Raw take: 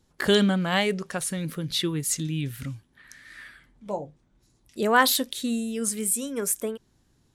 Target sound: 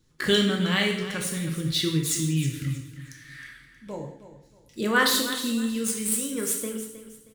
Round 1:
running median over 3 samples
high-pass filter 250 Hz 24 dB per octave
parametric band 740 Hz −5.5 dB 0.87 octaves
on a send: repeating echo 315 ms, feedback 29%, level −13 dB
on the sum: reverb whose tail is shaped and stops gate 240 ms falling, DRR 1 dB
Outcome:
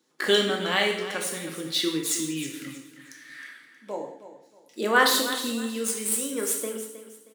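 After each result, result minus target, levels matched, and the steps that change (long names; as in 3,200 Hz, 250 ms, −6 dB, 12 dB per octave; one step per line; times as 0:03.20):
1,000 Hz band +4.0 dB; 250 Hz band −4.0 dB
change: parametric band 740 Hz −13 dB 0.87 octaves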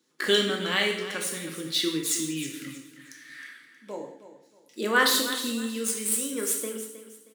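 250 Hz band −4.0 dB
remove: high-pass filter 250 Hz 24 dB per octave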